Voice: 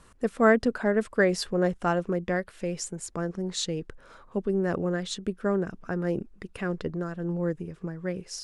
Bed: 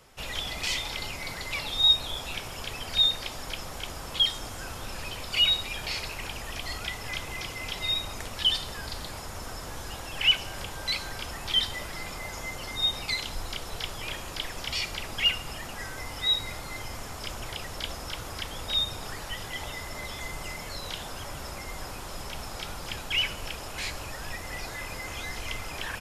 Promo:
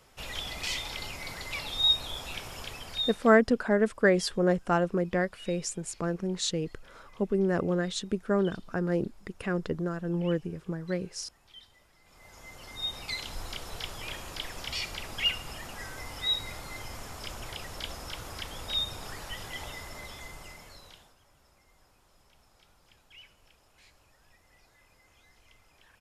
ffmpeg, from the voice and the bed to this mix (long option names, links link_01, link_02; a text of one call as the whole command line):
ffmpeg -i stem1.wav -i stem2.wav -filter_complex "[0:a]adelay=2850,volume=0dB[link_01];[1:a]volume=19.5dB,afade=type=out:start_time=2.59:duration=0.82:silence=0.0707946,afade=type=in:start_time=12.03:duration=1.39:silence=0.0707946,afade=type=out:start_time=19.61:duration=1.55:silence=0.0749894[link_02];[link_01][link_02]amix=inputs=2:normalize=0" out.wav